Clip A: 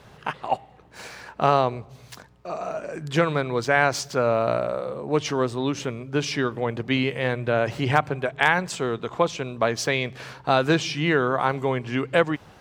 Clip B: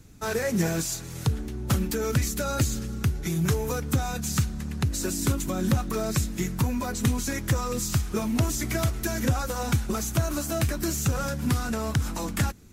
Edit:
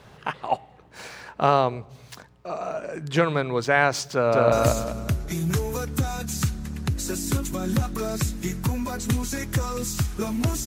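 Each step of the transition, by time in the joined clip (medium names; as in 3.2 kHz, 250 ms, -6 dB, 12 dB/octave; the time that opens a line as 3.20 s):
clip A
4.12–4.52 s: echo throw 200 ms, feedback 35%, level 0 dB
4.52 s: go over to clip B from 2.47 s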